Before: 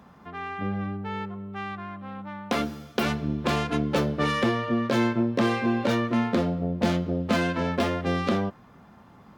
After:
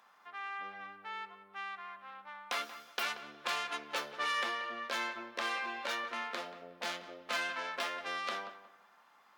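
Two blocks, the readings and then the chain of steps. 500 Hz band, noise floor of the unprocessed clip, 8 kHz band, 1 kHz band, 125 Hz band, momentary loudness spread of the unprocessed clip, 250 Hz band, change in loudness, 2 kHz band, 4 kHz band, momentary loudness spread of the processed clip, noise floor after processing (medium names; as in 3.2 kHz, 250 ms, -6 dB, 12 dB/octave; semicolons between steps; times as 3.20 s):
-17.0 dB, -52 dBFS, -4.0 dB, -7.5 dB, -38.0 dB, 11 LU, -29.0 dB, -11.5 dB, -4.5 dB, -4.0 dB, 12 LU, -64 dBFS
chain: high-pass 1.1 kHz 12 dB/octave; filtered feedback delay 182 ms, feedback 30%, low-pass 2.4 kHz, level -13 dB; trim -4 dB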